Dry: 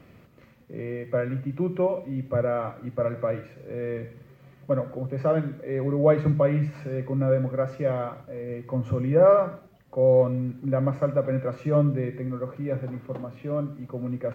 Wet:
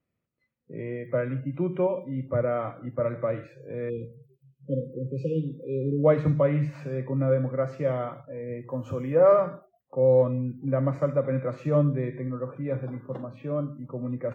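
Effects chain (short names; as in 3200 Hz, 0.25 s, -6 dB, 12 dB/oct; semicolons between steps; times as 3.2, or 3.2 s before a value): 8.69–9.32 tone controls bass -7 dB, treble +3 dB; spectral noise reduction 29 dB; 3.9–6.04 spectral delete 540–2400 Hz; gain -1 dB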